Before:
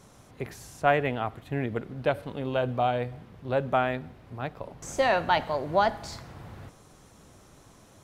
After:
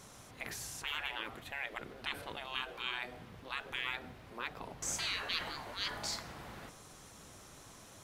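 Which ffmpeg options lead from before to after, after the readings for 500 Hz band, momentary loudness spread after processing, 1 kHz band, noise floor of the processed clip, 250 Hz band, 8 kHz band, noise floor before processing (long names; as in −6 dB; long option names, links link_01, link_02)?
−22.0 dB, 18 LU, −17.0 dB, −56 dBFS, −17.5 dB, +4.0 dB, −55 dBFS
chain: -af "afftfilt=real='re*lt(hypot(re,im),0.0562)':imag='im*lt(hypot(re,im),0.0562)':win_size=1024:overlap=0.75,tiltshelf=frequency=940:gain=-4"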